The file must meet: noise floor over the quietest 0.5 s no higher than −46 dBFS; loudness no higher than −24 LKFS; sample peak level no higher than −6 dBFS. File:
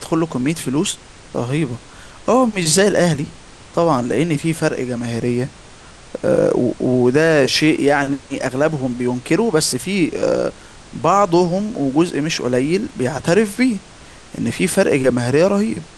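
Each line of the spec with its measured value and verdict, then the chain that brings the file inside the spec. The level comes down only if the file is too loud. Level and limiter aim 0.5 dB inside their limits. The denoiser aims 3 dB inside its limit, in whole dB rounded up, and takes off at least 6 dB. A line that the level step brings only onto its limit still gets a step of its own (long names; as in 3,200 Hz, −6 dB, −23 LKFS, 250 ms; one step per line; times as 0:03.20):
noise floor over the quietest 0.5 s −41 dBFS: out of spec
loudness −17.5 LKFS: out of spec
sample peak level −3.0 dBFS: out of spec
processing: level −7 dB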